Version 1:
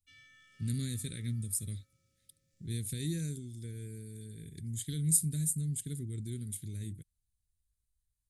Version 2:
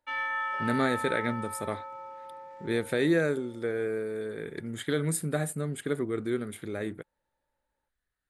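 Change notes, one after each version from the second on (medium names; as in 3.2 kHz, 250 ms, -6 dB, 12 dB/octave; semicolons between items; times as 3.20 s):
speech -6.5 dB; master: remove Chebyshev band-stop 100–7000 Hz, order 2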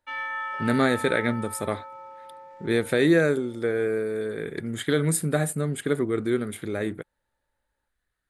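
speech +5.5 dB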